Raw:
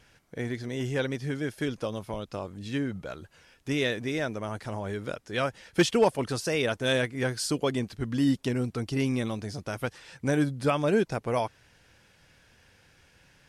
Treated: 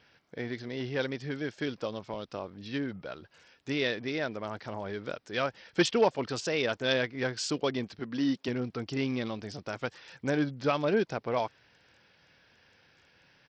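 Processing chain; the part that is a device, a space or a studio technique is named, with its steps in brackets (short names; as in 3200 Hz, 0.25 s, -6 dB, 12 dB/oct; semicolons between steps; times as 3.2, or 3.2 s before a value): 7.99–8.48 HPF 170 Hz 12 dB/oct; Bluetooth headset (HPF 200 Hz 6 dB/oct; downsampling 16000 Hz; gain -1.5 dB; SBC 64 kbps 44100 Hz)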